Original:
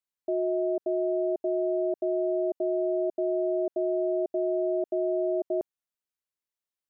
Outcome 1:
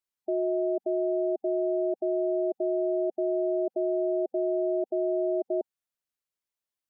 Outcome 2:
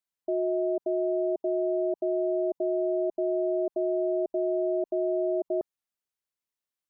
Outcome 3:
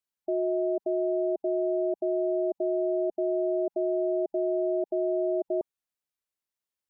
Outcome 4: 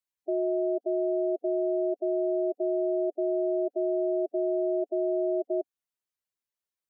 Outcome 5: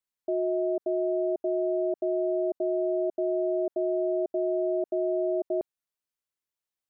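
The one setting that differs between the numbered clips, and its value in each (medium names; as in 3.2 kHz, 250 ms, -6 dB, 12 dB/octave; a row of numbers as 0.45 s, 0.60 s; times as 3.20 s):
spectral gate, under each frame's peak: -25 dB, -45 dB, -35 dB, -10 dB, -60 dB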